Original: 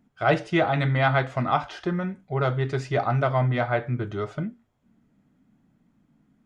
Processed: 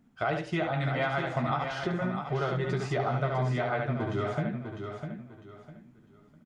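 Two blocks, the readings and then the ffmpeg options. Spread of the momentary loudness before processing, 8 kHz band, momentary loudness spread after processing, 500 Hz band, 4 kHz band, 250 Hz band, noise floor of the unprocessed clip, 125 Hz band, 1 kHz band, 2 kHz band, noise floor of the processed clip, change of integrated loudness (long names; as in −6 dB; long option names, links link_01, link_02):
8 LU, can't be measured, 12 LU, −5.0 dB, −4.5 dB, −4.0 dB, −68 dBFS, −5.5 dB, −6.0 dB, −5.5 dB, −59 dBFS, −5.5 dB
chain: -filter_complex "[0:a]asplit=2[link_01][link_02];[link_02]aecho=0:1:13|71:0.501|0.596[link_03];[link_01][link_03]amix=inputs=2:normalize=0,acompressor=threshold=-27dB:ratio=6,asplit=2[link_04][link_05];[link_05]aecho=0:1:652|1304|1956:0.447|0.125|0.035[link_06];[link_04][link_06]amix=inputs=2:normalize=0"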